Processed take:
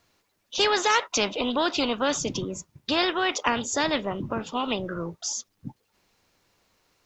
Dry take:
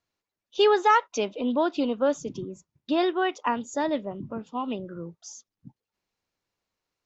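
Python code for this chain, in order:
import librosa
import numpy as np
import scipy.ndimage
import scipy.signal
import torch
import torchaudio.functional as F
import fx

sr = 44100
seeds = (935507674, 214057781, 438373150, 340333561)

y = fx.spectral_comp(x, sr, ratio=2.0)
y = y * librosa.db_to_amplitude(2.5)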